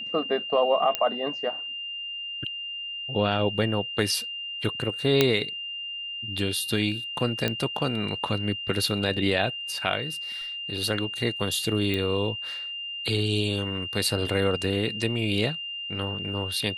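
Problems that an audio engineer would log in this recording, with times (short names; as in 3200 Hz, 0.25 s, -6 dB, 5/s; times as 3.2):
tone 2800 Hz -32 dBFS
0.95 pop -9 dBFS
5.21 pop -4 dBFS
7.48 pop -11 dBFS
11.94 pop -15 dBFS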